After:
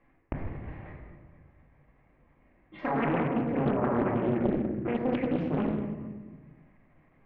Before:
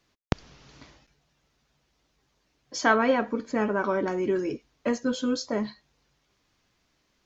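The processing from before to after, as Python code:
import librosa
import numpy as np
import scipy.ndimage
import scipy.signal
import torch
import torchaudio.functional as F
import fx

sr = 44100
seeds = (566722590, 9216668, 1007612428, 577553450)

p1 = fx.pitch_trill(x, sr, semitones=-8.0, every_ms=87)
p2 = scipy.signal.sosfilt(scipy.signal.cheby1(4, 1.0, 2100.0, 'lowpass', fs=sr, output='sos'), p1)
p3 = fx.peak_eq(p2, sr, hz=1400.0, db=-8.5, octaves=0.33)
p4 = fx.level_steps(p3, sr, step_db=19)
p5 = p4 + fx.echo_feedback(p4, sr, ms=233, feedback_pct=35, wet_db=-15.5, dry=0)
p6 = fx.room_shoebox(p5, sr, seeds[0], volume_m3=920.0, walls='mixed', distance_m=2.2)
p7 = fx.doppler_dist(p6, sr, depth_ms=0.83)
y = p7 * 10.0 ** (7.0 / 20.0)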